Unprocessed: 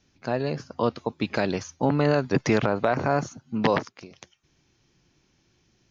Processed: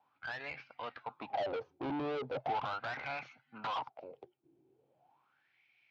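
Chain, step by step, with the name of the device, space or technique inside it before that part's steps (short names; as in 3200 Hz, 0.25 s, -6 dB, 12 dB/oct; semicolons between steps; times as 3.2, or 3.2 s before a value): wah-wah guitar rig (wah 0.39 Hz 340–2300 Hz, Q 9.5; tube stage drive 48 dB, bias 0.25; speaker cabinet 92–4000 Hz, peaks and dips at 130 Hz +8 dB, 190 Hz -5 dB, 370 Hz -6 dB, 790 Hz +7 dB, 1100 Hz -3 dB, 1800 Hz -7 dB); gain +14 dB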